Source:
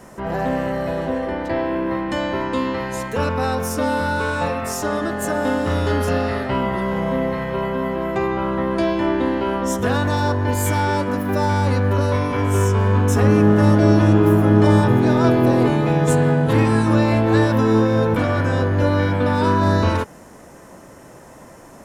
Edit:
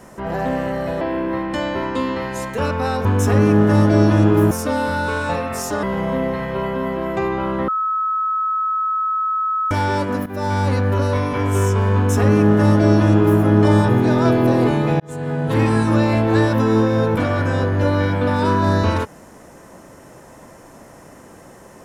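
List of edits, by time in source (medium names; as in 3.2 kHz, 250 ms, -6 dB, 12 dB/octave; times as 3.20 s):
1.01–1.59 s: delete
4.95–6.82 s: delete
8.67–10.70 s: bleep 1.29 kHz -17.5 dBFS
11.25–11.67 s: fade in equal-power, from -15 dB
12.94–14.40 s: copy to 3.63 s
15.99–16.64 s: fade in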